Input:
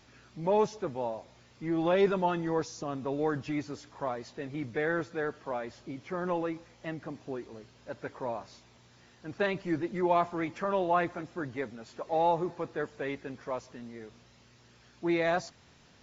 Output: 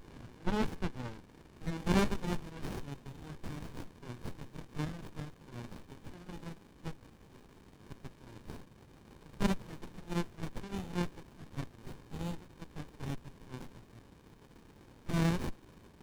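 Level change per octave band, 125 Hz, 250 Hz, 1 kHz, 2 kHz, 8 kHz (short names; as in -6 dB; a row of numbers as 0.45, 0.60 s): +2.0 dB, -4.0 dB, -12.5 dB, -8.5 dB, n/a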